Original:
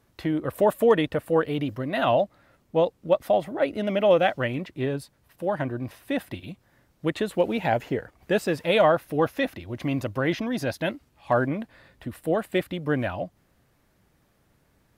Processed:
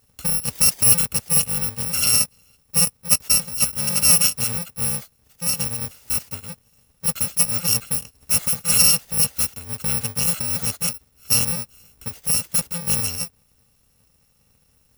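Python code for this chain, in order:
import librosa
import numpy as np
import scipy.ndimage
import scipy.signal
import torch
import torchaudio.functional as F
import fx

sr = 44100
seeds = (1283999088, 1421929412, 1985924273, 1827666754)

y = fx.bit_reversed(x, sr, seeds[0], block=128)
y = y * 10.0 ** (3.5 / 20.0)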